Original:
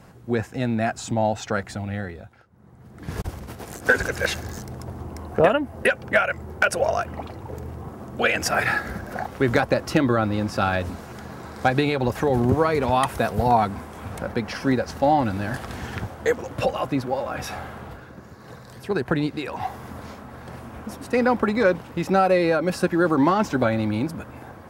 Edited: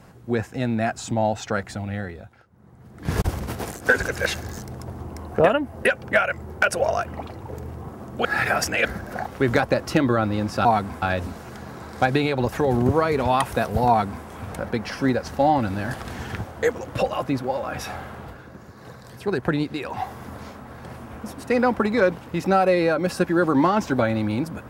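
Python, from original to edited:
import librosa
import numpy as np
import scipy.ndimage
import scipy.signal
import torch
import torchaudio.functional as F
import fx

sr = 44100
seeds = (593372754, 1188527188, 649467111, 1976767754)

y = fx.edit(x, sr, fx.clip_gain(start_s=3.05, length_s=0.66, db=7.0),
    fx.reverse_span(start_s=8.25, length_s=0.6),
    fx.duplicate(start_s=13.51, length_s=0.37, to_s=10.65), tone=tone)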